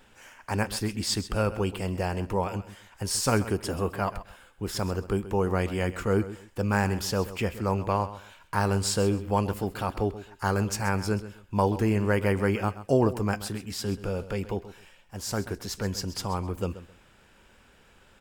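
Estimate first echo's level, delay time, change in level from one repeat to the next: -14.5 dB, 131 ms, -13.0 dB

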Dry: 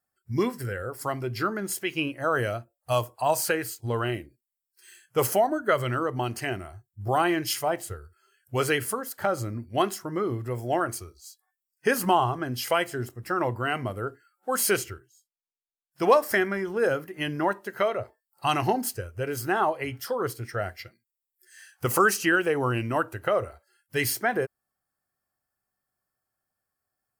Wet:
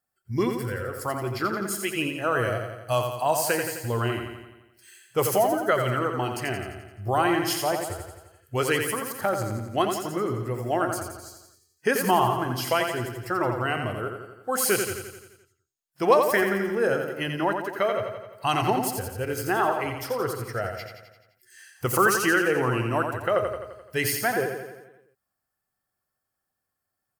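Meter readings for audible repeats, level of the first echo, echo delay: 7, -6.0 dB, 86 ms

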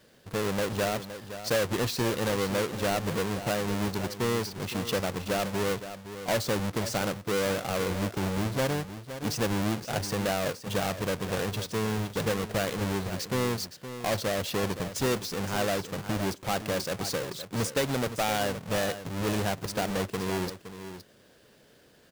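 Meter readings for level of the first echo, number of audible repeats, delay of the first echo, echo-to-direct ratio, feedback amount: -11.5 dB, 1, 516 ms, -11.5 dB, no regular repeats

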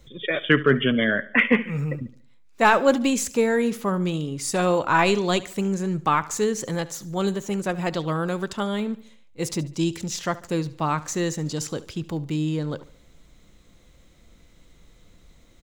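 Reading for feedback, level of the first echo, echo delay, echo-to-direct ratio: 44%, -18.5 dB, 72 ms, -17.5 dB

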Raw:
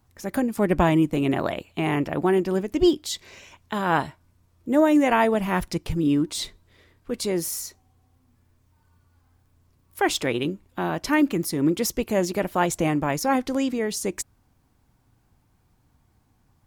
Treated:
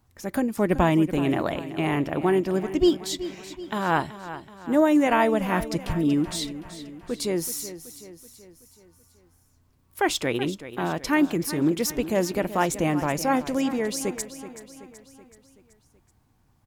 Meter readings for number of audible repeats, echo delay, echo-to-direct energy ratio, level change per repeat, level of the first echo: 4, 378 ms, -12.0 dB, -5.5 dB, -13.5 dB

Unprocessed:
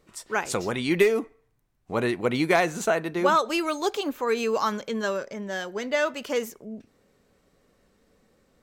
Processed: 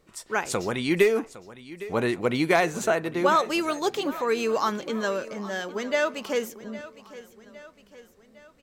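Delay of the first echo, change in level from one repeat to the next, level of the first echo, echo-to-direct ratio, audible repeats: 809 ms, -5.5 dB, -17.0 dB, -15.5 dB, 3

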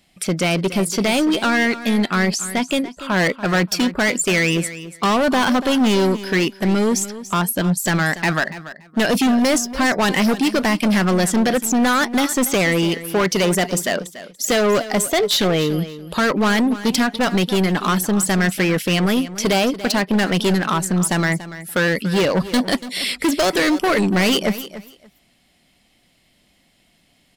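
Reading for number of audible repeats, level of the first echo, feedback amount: 2, -14.5 dB, 18%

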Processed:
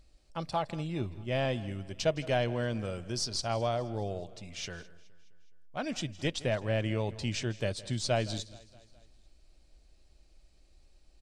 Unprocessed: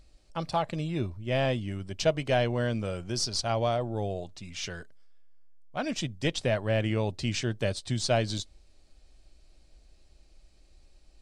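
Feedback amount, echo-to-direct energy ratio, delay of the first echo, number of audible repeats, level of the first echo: no regular repeats, -17.0 dB, 163 ms, 4, -19.5 dB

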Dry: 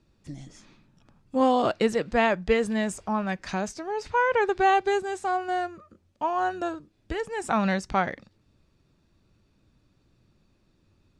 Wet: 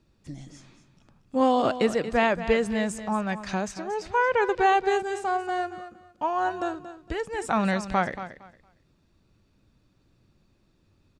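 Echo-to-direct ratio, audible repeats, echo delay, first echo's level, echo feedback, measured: -12.5 dB, 2, 230 ms, -12.5 dB, 21%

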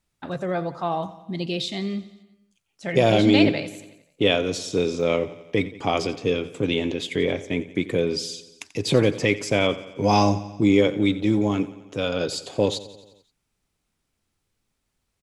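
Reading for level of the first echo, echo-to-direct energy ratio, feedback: -16.5 dB, -14.5 dB, 60%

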